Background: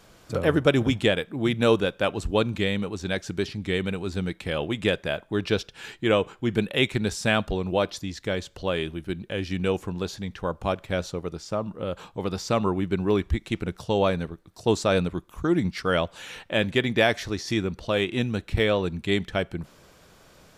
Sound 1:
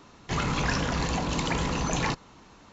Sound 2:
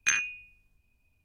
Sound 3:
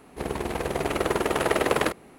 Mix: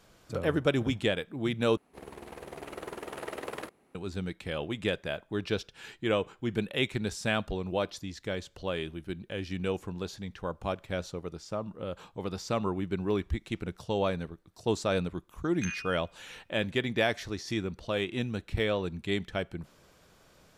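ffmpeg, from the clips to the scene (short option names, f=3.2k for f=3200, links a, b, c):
-filter_complex "[0:a]volume=-6.5dB[a];[3:a]lowshelf=f=110:g=-5.5[b];[2:a]dynaudnorm=f=110:g=3:m=11.5dB[c];[a]asplit=2[d][e];[d]atrim=end=1.774[f];[b]atrim=end=2.18,asetpts=PTS-STARTPTS,volume=-15.5dB[g];[e]atrim=start=3.946[h];[c]atrim=end=1.24,asetpts=PTS-STARTPTS,volume=-15.5dB,afade=t=in:d=0.004:c=hsin,afade=t=out:st=1.236:d=0.004:c=hsin,adelay=15550[i];[f][g]acrossfade=d=0.004:c1=hsin:c2=hsin[j];[j][h]acrossfade=d=0.004:c1=hsin:c2=hsin[k];[k][i]amix=inputs=2:normalize=0"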